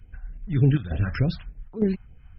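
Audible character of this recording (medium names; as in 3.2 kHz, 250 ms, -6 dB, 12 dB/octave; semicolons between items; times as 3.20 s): phasing stages 2, 3.4 Hz, lowest notch 380–1200 Hz; chopped level 1.1 Hz, depth 65%, duty 85%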